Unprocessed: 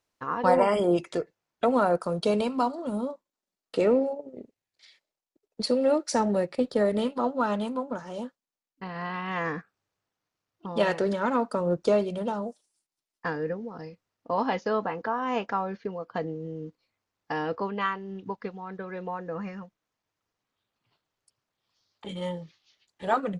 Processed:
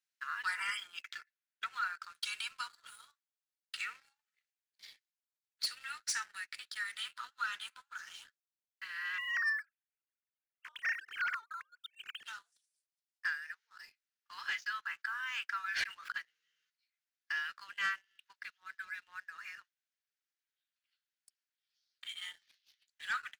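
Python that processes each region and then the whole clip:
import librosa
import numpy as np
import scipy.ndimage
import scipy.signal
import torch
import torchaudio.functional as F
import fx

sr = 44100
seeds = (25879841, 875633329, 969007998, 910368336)

y = fx.chain(x, sr, fx.median_filter(points=5),
    fx.lowpass(hz=7600.0, slope=24),
    fx.high_shelf(hz=4900.0, db=-5.0), at=(0.77, 2.15))
y = fx.chain(y, sr, fx.sine_speech(),
    fx.over_compress(threshold_db=-29.0, ratio=-1.0), at=(9.18, 12.24))
y = fx.chain(y, sr, fx.peak_eq(hz=1800.0, db=7.5, octaves=2.9),
    fx.sustainer(db_per_s=27.0), at=(15.64, 16.12))
y = scipy.signal.sosfilt(scipy.signal.ellip(4, 1.0, 60, 1500.0, 'highpass', fs=sr, output='sos'), y)
y = fx.dynamic_eq(y, sr, hz=4500.0, q=1.3, threshold_db=-52.0, ratio=4.0, max_db=-3)
y = fx.leveller(y, sr, passes=2)
y = F.gain(torch.from_numpy(y), -4.5).numpy()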